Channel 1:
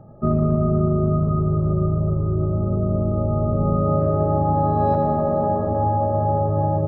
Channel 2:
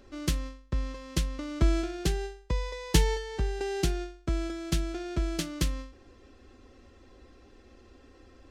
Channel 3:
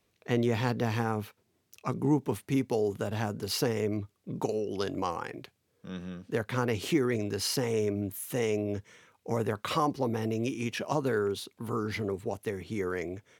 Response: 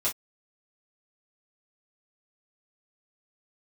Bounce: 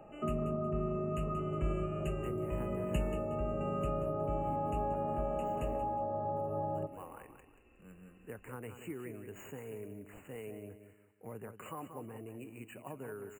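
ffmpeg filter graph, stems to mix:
-filter_complex "[0:a]highpass=340,volume=-3dB,asplit=2[link_01][link_02];[link_02]volume=-19.5dB[link_03];[1:a]equalizer=frequency=2700:width=3.6:gain=12,volume=-11.5dB,asplit=2[link_04][link_05];[link_05]volume=-11dB[link_06];[2:a]acrusher=samples=4:mix=1:aa=0.000001,adelay=1950,volume=-16dB,asplit=2[link_07][link_08];[link_08]volume=-9.5dB[link_09];[link_03][link_06][link_09]amix=inputs=3:normalize=0,aecho=0:1:182|364|546|728|910:1|0.33|0.109|0.0359|0.0119[link_10];[link_01][link_04][link_07][link_10]amix=inputs=4:normalize=0,afftfilt=real='re*(1-between(b*sr/4096,3000,6700))':imag='im*(1-between(b*sr/4096,3000,6700))':win_size=4096:overlap=0.75,acrossover=split=190[link_11][link_12];[link_12]acompressor=threshold=-38dB:ratio=3[link_13];[link_11][link_13]amix=inputs=2:normalize=0"

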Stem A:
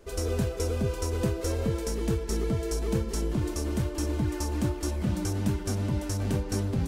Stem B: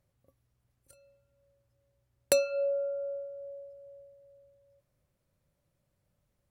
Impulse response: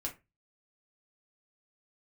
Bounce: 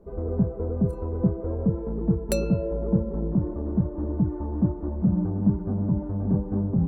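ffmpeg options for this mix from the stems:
-filter_complex "[0:a]lowpass=frequency=1000:width=0.5412,lowpass=frequency=1000:width=1.3066,volume=-0.5dB[link_01];[1:a]volume=-3.5dB,asplit=2[link_02][link_03];[link_03]volume=-21.5dB[link_04];[2:a]atrim=start_sample=2205[link_05];[link_04][link_05]afir=irnorm=-1:irlink=0[link_06];[link_01][link_02][link_06]amix=inputs=3:normalize=0,equalizer=frequency=180:width=2.4:gain=12.5"

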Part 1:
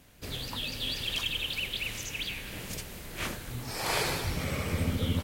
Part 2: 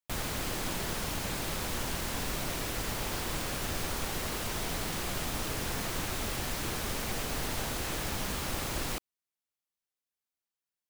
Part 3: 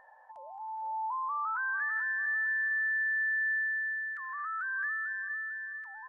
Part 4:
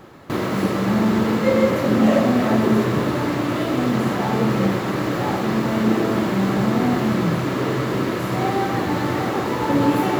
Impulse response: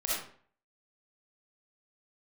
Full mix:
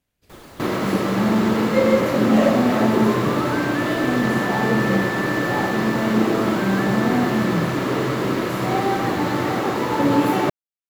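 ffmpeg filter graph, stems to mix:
-filter_complex "[0:a]volume=-19.5dB[link_01];[1:a]adelay=200,volume=-14dB[link_02];[2:a]adelay=1950,volume=1dB[link_03];[3:a]lowshelf=frequency=79:gain=-10,adelay=300,volume=1dB[link_04];[link_01][link_02][link_03][link_04]amix=inputs=4:normalize=0"

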